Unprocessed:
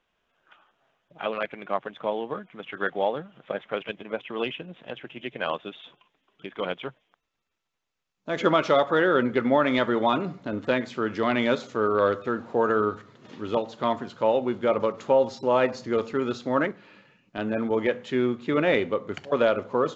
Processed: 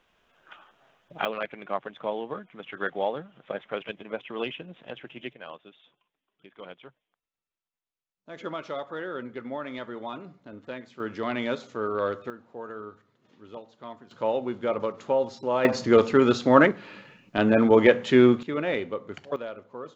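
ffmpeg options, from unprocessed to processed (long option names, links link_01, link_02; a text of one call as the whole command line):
ffmpeg -i in.wav -af "asetnsamples=nb_out_samples=441:pad=0,asendcmd='1.25 volume volume -2.5dB;5.33 volume volume -13.5dB;11 volume volume -5.5dB;12.3 volume volume -16dB;14.11 volume volume -4dB;15.65 volume volume 7.5dB;18.43 volume volume -5.5dB;19.36 volume volume -15dB',volume=7dB" out.wav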